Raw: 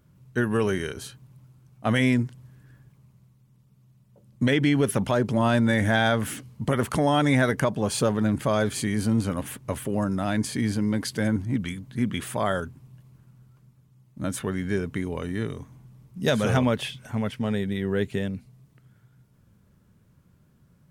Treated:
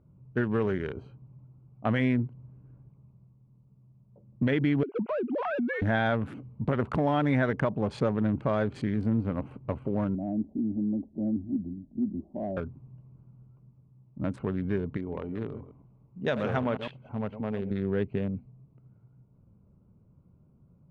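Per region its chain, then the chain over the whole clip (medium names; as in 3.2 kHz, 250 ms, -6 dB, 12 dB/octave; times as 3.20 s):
4.83–5.82 s: formants replaced by sine waves + compression 10:1, threshold -24 dBFS
10.15–12.57 s: steep low-pass 650 Hz + static phaser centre 470 Hz, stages 6
14.97–17.71 s: chunks repeated in reverse 106 ms, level -10 dB + bass shelf 310 Hz -8 dB
whole clip: local Wiener filter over 25 samples; low-pass 2.4 kHz 12 dB/octave; compression 1.5:1, threshold -28 dBFS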